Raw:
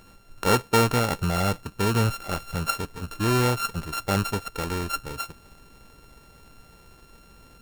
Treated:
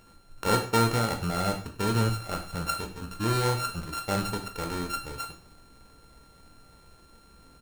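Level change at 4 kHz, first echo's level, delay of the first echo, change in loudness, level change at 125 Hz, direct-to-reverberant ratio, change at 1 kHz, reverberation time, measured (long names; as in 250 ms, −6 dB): −2.5 dB, −16.5 dB, 99 ms, −3.5 dB, −3.5 dB, 4.0 dB, −2.5 dB, 0.45 s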